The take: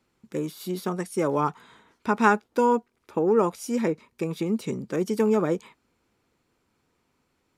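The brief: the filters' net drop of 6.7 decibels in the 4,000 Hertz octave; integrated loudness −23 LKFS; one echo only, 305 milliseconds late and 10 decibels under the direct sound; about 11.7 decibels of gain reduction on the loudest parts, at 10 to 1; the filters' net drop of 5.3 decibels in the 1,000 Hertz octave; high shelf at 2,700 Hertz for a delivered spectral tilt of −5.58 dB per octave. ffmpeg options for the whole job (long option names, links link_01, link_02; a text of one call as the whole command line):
ffmpeg -i in.wav -af "equalizer=frequency=1000:width_type=o:gain=-5.5,highshelf=frequency=2700:gain=-4,equalizer=frequency=4000:width_type=o:gain=-5,acompressor=threshold=-30dB:ratio=10,aecho=1:1:305:0.316,volume=13dB" out.wav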